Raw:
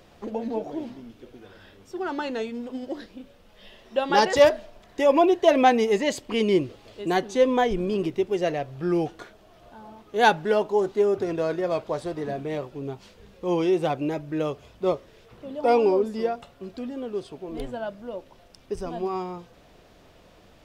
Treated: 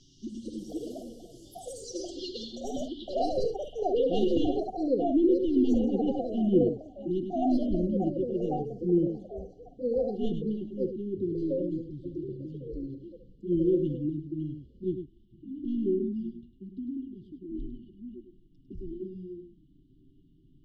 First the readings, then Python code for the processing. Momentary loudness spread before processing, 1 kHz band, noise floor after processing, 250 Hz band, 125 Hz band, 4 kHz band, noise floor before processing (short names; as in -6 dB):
17 LU, -13.0 dB, -59 dBFS, 0.0 dB, 0.0 dB, under -10 dB, -54 dBFS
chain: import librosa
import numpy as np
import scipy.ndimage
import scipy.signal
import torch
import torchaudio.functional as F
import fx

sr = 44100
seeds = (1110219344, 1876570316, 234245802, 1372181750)

p1 = fx.tracing_dist(x, sr, depth_ms=0.17)
p2 = fx.high_shelf(p1, sr, hz=3200.0, db=-4.5)
p3 = fx.env_flanger(p2, sr, rest_ms=8.1, full_db=-19.5)
p4 = fx.brickwall_bandstop(p3, sr, low_hz=380.0, high_hz=2800.0)
p5 = p4 + fx.echo_single(p4, sr, ms=102, db=-8.0, dry=0)
p6 = fx.filter_sweep_lowpass(p5, sr, from_hz=5900.0, to_hz=1100.0, start_s=1.88, end_s=5.11, q=5.3)
y = fx.echo_pitch(p6, sr, ms=292, semitones=6, count=2, db_per_echo=-3.0)